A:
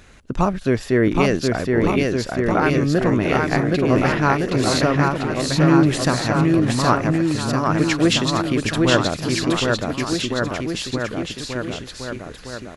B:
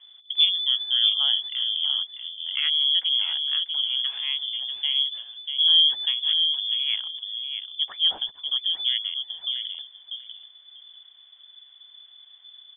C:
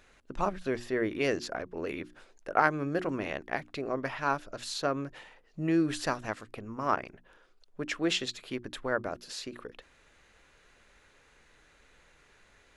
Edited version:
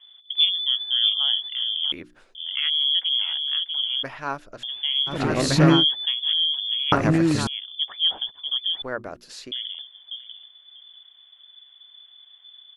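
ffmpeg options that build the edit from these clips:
-filter_complex "[2:a]asplit=3[a][b][c];[0:a]asplit=2[d][e];[1:a]asplit=6[f][g][h][i][j][k];[f]atrim=end=1.922[l];[a]atrim=start=1.918:end=2.352[m];[g]atrim=start=2.348:end=4.032[n];[b]atrim=start=4.028:end=4.632[o];[h]atrim=start=4.628:end=5.22[p];[d]atrim=start=5.06:end=5.85[q];[i]atrim=start=5.69:end=6.922[r];[e]atrim=start=6.918:end=7.472[s];[j]atrim=start=7.468:end=8.822[t];[c]atrim=start=8.818:end=9.522[u];[k]atrim=start=9.518[v];[l][m]acrossfade=d=0.004:c1=hsin:c2=hsin[w];[w][n]acrossfade=d=0.004:c1=hsin:c2=hsin[x];[x][o]acrossfade=d=0.004:c1=hsin:c2=hsin[y];[y][p]acrossfade=d=0.004:c1=hsin:c2=hsin[z];[z][q]acrossfade=d=0.16:c1=tri:c2=tri[aa];[aa][r]acrossfade=d=0.16:c1=tri:c2=tri[ab];[ab][s]acrossfade=d=0.004:c1=hsin:c2=hsin[ac];[ac][t]acrossfade=d=0.004:c1=hsin:c2=hsin[ad];[ad][u]acrossfade=d=0.004:c1=hsin:c2=hsin[ae];[ae][v]acrossfade=d=0.004:c1=hsin:c2=hsin"

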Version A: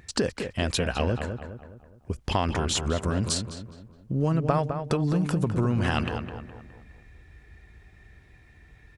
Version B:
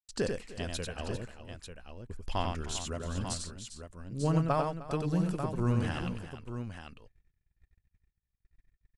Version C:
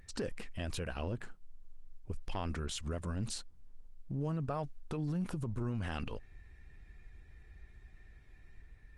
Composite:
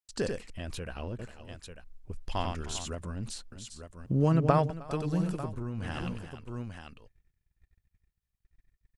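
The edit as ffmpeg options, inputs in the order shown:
-filter_complex "[2:a]asplit=4[a][b][c][d];[1:a]asplit=6[e][f][g][h][i][j];[e]atrim=end=0.502[k];[a]atrim=start=0.498:end=1.192[l];[f]atrim=start=1.188:end=1.842[m];[b]atrim=start=1.838:end=2.282[n];[g]atrim=start=2.278:end=2.952[o];[c]atrim=start=2.948:end=3.522[p];[h]atrim=start=3.518:end=4.062[q];[0:a]atrim=start=4.058:end=4.702[r];[i]atrim=start=4.698:end=5.6[s];[d]atrim=start=5.36:end=6[t];[j]atrim=start=5.76[u];[k][l]acrossfade=d=0.004:c1=hsin:c2=hsin[v];[v][m]acrossfade=d=0.004:c1=hsin:c2=hsin[w];[w][n]acrossfade=d=0.004:c1=hsin:c2=hsin[x];[x][o]acrossfade=d=0.004:c1=hsin:c2=hsin[y];[y][p]acrossfade=d=0.004:c1=hsin:c2=hsin[z];[z][q]acrossfade=d=0.004:c1=hsin:c2=hsin[aa];[aa][r]acrossfade=d=0.004:c1=hsin:c2=hsin[ab];[ab][s]acrossfade=d=0.004:c1=hsin:c2=hsin[ac];[ac][t]acrossfade=d=0.24:c1=tri:c2=tri[ad];[ad][u]acrossfade=d=0.24:c1=tri:c2=tri"

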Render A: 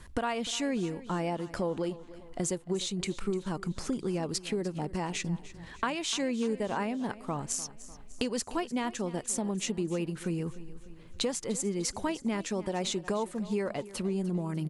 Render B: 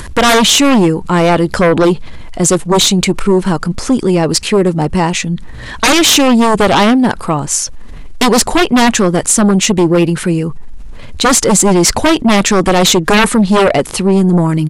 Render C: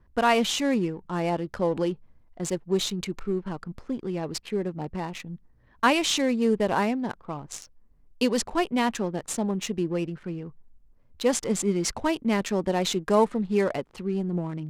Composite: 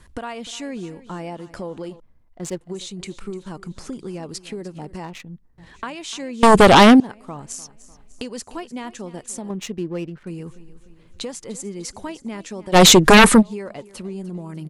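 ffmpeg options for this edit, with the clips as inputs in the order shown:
-filter_complex "[2:a]asplit=3[a][b][c];[1:a]asplit=2[d][e];[0:a]asplit=6[f][g][h][i][j][k];[f]atrim=end=2.002[l];[a]atrim=start=1.998:end=2.612[m];[g]atrim=start=2.608:end=5.042[n];[b]atrim=start=5.038:end=5.582[o];[h]atrim=start=5.578:end=6.432[p];[d]atrim=start=6.428:end=7.002[q];[i]atrim=start=6.998:end=9.502[r];[c]atrim=start=9.498:end=10.272[s];[j]atrim=start=10.268:end=12.76[t];[e]atrim=start=12.72:end=13.43[u];[k]atrim=start=13.39[v];[l][m]acrossfade=d=0.004:c1=hsin:c2=hsin[w];[w][n]acrossfade=d=0.004:c1=hsin:c2=hsin[x];[x][o]acrossfade=d=0.004:c1=hsin:c2=hsin[y];[y][p]acrossfade=d=0.004:c1=hsin:c2=hsin[z];[z][q]acrossfade=d=0.004:c1=hsin:c2=hsin[aa];[aa][r]acrossfade=d=0.004:c1=hsin:c2=hsin[ab];[ab][s]acrossfade=d=0.004:c1=hsin:c2=hsin[ac];[ac][t]acrossfade=d=0.004:c1=hsin:c2=hsin[ad];[ad][u]acrossfade=d=0.04:c1=tri:c2=tri[ae];[ae][v]acrossfade=d=0.04:c1=tri:c2=tri"

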